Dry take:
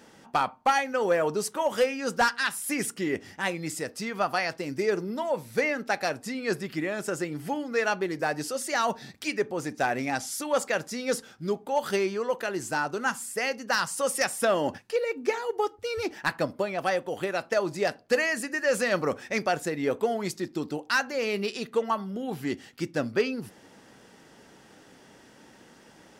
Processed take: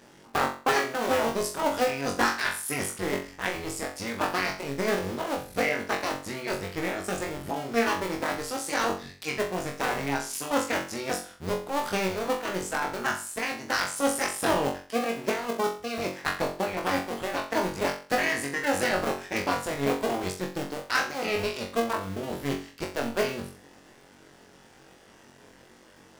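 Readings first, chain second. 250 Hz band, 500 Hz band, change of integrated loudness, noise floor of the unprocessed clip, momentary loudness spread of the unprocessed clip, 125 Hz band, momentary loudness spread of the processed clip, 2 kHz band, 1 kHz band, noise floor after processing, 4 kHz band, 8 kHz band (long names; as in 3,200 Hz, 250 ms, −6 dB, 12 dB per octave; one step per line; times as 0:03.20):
+0.5 dB, −1.5 dB, −0.5 dB, −55 dBFS, 6 LU, +1.5 dB, 7 LU, 0.0 dB, +0.5 dB, −54 dBFS, +1.5 dB, +0.5 dB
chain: sub-harmonics by changed cycles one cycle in 2, muted
flutter between parallel walls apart 3.7 metres, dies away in 0.38 s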